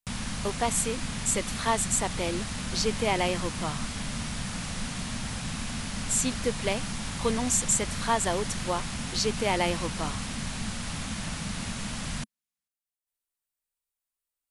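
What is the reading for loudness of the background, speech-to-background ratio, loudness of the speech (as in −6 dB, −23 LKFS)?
−34.0 LKFS, 5.0 dB, −29.0 LKFS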